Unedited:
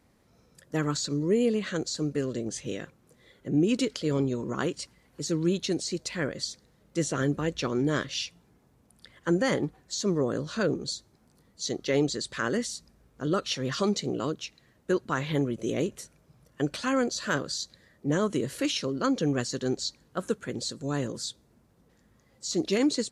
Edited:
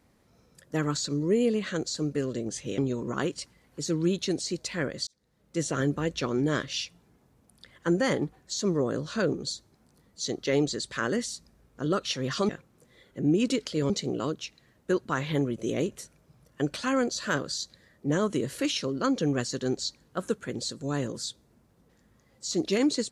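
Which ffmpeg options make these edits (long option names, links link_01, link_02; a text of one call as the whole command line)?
ffmpeg -i in.wav -filter_complex "[0:a]asplit=5[link_01][link_02][link_03][link_04][link_05];[link_01]atrim=end=2.782[link_06];[link_02]atrim=start=4.188:end=6.48,asetpts=PTS-STARTPTS,afade=type=out:start_time=2.288:duration=0.004:curve=hsin[link_07];[link_03]atrim=start=6.48:end=13.902,asetpts=PTS-STARTPTS,afade=type=in:duration=0.62[link_08];[link_04]atrim=start=2.778:end=4.192[link_09];[link_05]atrim=start=13.898[link_10];[link_07][link_08]concat=n=2:v=0:a=1[link_11];[link_06][link_11]acrossfade=duration=0.004:curve1=hsin:curve2=hsin[link_12];[link_12][link_09]acrossfade=duration=0.004:curve1=hsin:curve2=hsin[link_13];[link_13][link_10]acrossfade=duration=0.004:curve1=hsin:curve2=hsin" out.wav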